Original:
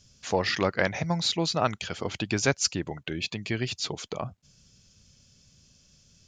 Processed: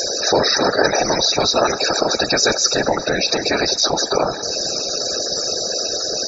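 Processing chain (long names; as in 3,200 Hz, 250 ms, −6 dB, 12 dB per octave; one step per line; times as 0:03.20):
compressor on every frequency bin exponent 0.2
bass and treble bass −10 dB, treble +5 dB
spectral peaks only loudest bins 32
four-comb reverb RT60 2.3 s, combs from 25 ms, DRR 19 dB
random phases in short frames
level +5.5 dB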